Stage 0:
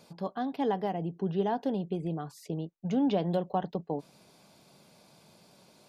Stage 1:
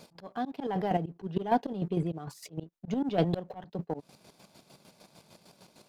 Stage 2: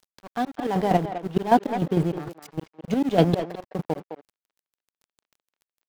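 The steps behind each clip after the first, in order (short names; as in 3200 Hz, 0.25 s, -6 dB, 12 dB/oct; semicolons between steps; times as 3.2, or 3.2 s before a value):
sample leveller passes 1; chopper 6.6 Hz, depth 60%, duty 40%; auto swell 0.183 s; gain +5 dB
in parallel at -11 dB: bit-crush 7-bit; on the sum: crossover distortion -39.5 dBFS; speakerphone echo 0.21 s, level -9 dB; gain +7 dB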